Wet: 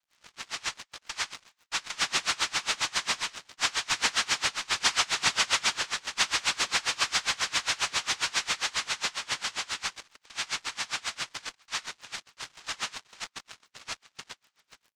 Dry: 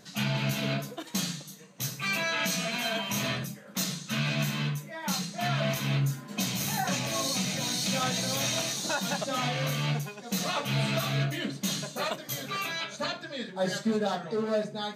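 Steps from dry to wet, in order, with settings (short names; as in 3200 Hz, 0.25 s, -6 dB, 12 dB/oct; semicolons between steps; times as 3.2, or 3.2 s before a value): Doppler pass-by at 5.16, 17 m/s, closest 11 m; notch 3100 Hz, Q 6.2; doubler 26 ms -11 dB; on a send: thin delay 77 ms, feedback 55%, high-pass 5400 Hz, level -9 dB; on the sum: AGC gain up to 14 dB; elliptic high-pass 1500 Hz; noise vocoder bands 2; in parallel at -10 dB: fuzz box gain 43 dB, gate -46 dBFS; on the sum: air absorption 81 m; crackle 84/s -47 dBFS; dB-linear tremolo 7.4 Hz, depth 26 dB; gain +1 dB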